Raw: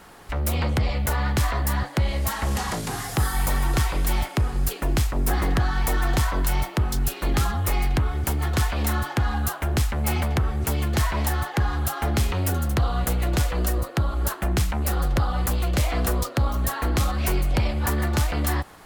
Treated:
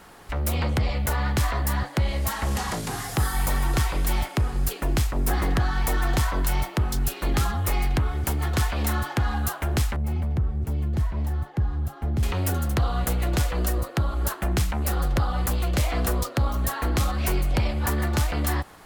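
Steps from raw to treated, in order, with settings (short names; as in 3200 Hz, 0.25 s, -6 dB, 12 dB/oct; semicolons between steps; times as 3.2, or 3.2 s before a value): 9.96–12.23 EQ curve 150 Hz 0 dB, 1300 Hz -14 dB, 6200 Hz -18 dB; gain -1 dB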